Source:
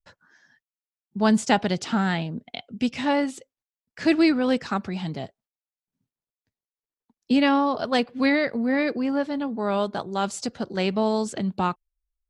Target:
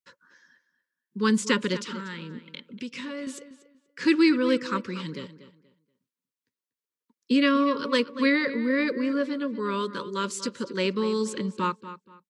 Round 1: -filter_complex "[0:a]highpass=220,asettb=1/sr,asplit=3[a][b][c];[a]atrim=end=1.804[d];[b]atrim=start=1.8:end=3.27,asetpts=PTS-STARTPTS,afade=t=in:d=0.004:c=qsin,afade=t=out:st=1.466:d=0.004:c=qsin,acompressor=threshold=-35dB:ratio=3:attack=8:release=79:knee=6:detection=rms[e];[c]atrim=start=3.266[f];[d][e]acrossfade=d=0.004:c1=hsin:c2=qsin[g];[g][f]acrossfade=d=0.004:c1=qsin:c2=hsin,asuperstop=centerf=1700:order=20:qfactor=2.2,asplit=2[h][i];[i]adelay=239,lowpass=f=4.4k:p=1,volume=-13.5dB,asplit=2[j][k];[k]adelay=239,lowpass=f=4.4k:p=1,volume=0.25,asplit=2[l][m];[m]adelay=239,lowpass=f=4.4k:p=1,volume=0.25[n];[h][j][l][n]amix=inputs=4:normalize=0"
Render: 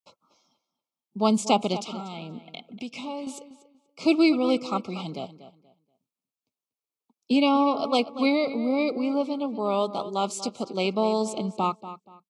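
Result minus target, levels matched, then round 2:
2000 Hz band -7.0 dB
-filter_complex "[0:a]highpass=220,asettb=1/sr,asplit=3[a][b][c];[a]atrim=end=1.804[d];[b]atrim=start=1.8:end=3.27,asetpts=PTS-STARTPTS,afade=t=in:d=0.004:c=qsin,afade=t=out:st=1.466:d=0.004:c=qsin,acompressor=threshold=-35dB:ratio=3:attack=8:release=79:knee=6:detection=rms[e];[c]atrim=start=3.266[f];[d][e]acrossfade=d=0.004:c1=hsin:c2=qsin[g];[g][f]acrossfade=d=0.004:c1=qsin:c2=hsin,asuperstop=centerf=720:order=20:qfactor=2.2,asplit=2[h][i];[i]adelay=239,lowpass=f=4.4k:p=1,volume=-13.5dB,asplit=2[j][k];[k]adelay=239,lowpass=f=4.4k:p=1,volume=0.25,asplit=2[l][m];[m]adelay=239,lowpass=f=4.4k:p=1,volume=0.25[n];[h][j][l][n]amix=inputs=4:normalize=0"

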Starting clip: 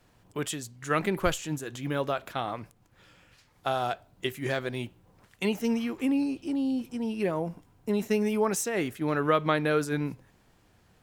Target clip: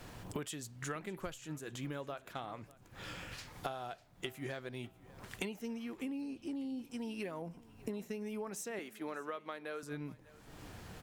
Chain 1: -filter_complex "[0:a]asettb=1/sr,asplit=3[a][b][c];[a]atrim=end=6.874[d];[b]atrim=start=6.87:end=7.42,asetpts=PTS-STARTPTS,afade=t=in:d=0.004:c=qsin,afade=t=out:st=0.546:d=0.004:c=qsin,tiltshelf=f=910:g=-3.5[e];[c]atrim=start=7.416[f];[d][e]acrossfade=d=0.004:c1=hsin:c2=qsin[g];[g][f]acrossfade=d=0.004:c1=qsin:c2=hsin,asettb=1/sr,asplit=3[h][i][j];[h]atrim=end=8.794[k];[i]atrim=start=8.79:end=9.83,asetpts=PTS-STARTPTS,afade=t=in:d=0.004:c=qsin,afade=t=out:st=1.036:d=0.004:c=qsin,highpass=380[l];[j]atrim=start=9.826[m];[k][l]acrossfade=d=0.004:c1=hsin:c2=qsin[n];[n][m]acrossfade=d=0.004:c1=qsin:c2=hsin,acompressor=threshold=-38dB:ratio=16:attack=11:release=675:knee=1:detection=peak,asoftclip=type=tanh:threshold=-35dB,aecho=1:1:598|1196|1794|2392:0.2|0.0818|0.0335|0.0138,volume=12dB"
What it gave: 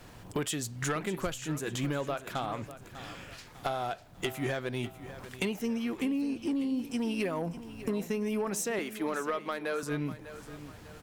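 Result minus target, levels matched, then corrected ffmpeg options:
compressor: peak gain reduction -11 dB; echo-to-direct +7 dB
-filter_complex "[0:a]asettb=1/sr,asplit=3[a][b][c];[a]atrim=end=6.874[d];[b]atrim=start=6.87:end=7.42,asetpts=PTS-STARTPTS,afade=t=in:d=0.004:c=qsin,afade=t=out:st=0.546:d=0.004:c=qsin,tiltshelf=f=910:g=-3.5[e];[c]atrim=start=7.416[f];[d][e]acrossfade=d=0.004:c1=hsin:c2=qsin[g];[g][f]acrossfade=d=0.004:c1=qsin:c2=hsin,asettb=1/sr,asplit=3[h][i][j];[h]atrim=end=8.794[k];[i]atrim=start=8.79:end=9.83,asetpts=PTS-STARTPTS,afade=t=in:d=0.004:c=qsin,afade=t=out:st=1.036:d=0.004:c=qsin,highpass=380[l];[j]atrim=start=9.826[m];[k][l]acrossfade=d=0.004:c1=hsin:c2=qsin[n];[n][m]acrossfade=d=0.004:c1=qsin:c2=hsin,acompressor=threshold=-49.5dB:ratio=16:attack=11:release=675:knee=1:detection=peak,asoftclip=type=tanh:threshold=-35dB,aecho=1:1:598|1196|1794:0.0891|0.0365|0.015,volume=12dB"

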